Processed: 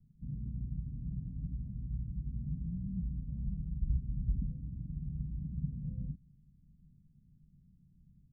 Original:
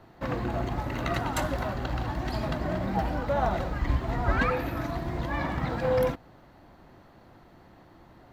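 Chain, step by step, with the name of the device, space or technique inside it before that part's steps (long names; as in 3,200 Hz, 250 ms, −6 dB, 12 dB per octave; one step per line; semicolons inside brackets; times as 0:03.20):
the neighbour's flat through the wall (low-pass filter 160 Hz 24 dB per octave; parametric band 150 Hz +7 dB 0.73 octaves)
comb filter 4.6 ms, depth 51%
level −6 dB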